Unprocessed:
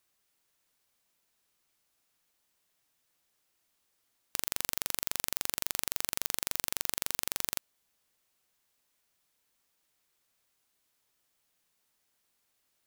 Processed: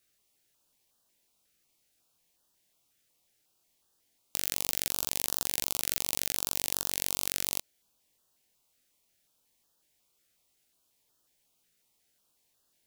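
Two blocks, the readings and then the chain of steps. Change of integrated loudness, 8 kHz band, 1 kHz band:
+2.5 dB, +3.0 dB, −0.5 dB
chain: chorus effect 0.18 Hz, delay 16.5 ms, depth 7.5 ms
notch on a step sequencer 5.5 Hz 980–2,200 Hz
level +6.5 dB

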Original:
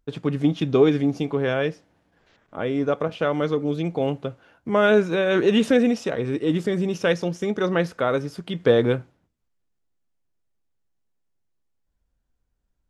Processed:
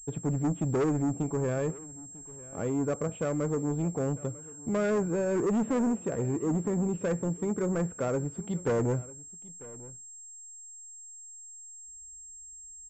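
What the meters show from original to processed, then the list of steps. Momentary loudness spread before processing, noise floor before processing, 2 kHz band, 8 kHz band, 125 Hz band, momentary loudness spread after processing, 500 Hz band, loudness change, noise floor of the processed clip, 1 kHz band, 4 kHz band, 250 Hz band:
9 LU, −74 dBFS, −14.5 dB, +9.0 dB, −3.0 dB, 16 LU, −9.0 dB, −8.0 dB, −47 dBFS, −8.5 dB, below −20 dB, −6.5 dB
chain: treble cut that deepens with the level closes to 2,100 Hz, closed at −19 dBFS
spectral tilt −3 dB per octave
soft clipping −15.5 dBFS, distortion −10 dB
single-tap delay 946 ms −20 dB
switching amplifier with a slow clock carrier 7,500 Hz
level −8 dB

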